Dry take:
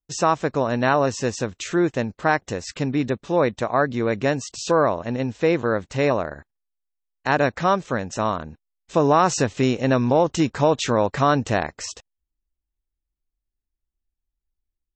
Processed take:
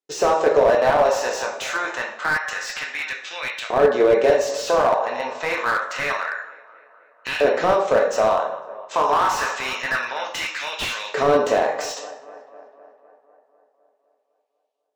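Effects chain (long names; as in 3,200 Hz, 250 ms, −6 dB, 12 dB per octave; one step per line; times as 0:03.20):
auto-filter high-pass saw up 0.27 Hz 400–2,900 Hz
in parallel at +3 dB: output level in coarse steps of 22 dB
on the sum: Bessel low-pass filter 7,500 Hz
hum removal 79.47 Hz, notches 14
on a send: tape delay 252 ms, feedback 69%, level −22 dB, low-pass 2,600 Hz
on the sum: brickwall limiter −8.5 dBFS, peak gain reduction 10.5 dB
dense smooth reverb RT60 0.6 s, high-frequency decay 0.85×, DRR 0.5 dB
slew-rate limiting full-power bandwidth 190 Hz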